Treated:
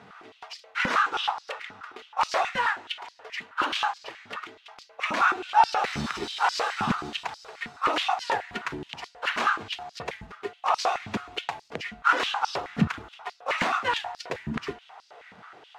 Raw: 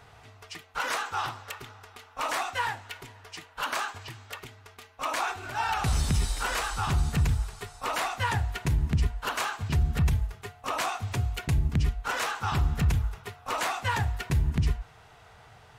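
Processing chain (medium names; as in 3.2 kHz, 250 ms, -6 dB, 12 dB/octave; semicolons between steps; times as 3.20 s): median filter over 5 samples; distance through air 63 m; step-sequenced high-pass 9.4 Hz 210–4900 Hz; trim +3 dB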